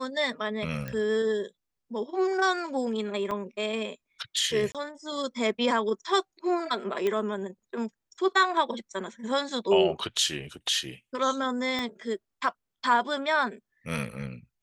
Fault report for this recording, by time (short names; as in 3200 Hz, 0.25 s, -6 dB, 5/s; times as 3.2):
0.88 pop -21 dBFS
3.31 gap 3.5 ms
4.72–4.75 gap 27 ms
7.07 pop -16 dBFS
11.79 pop -17 dBFS